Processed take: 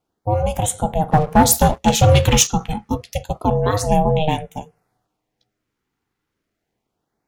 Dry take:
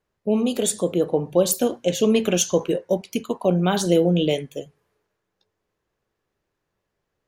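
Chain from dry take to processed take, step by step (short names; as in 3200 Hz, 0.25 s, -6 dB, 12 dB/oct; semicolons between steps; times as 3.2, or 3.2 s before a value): ring modulator 310 Hz; LFO notch sine 0.29 Hz 610–4900 Hz; 1.11–2.47 sample leveller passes 2; gain +5 dB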